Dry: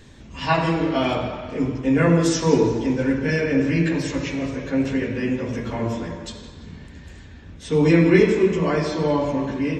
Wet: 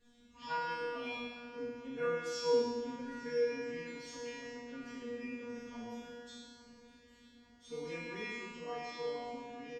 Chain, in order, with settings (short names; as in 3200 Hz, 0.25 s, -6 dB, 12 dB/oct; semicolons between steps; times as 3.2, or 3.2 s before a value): resonator 240 Hz, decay 1.3 s, mix 100%; feedback echo 0.856 s, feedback 56%, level -18.5 dB; gain +3.5 dB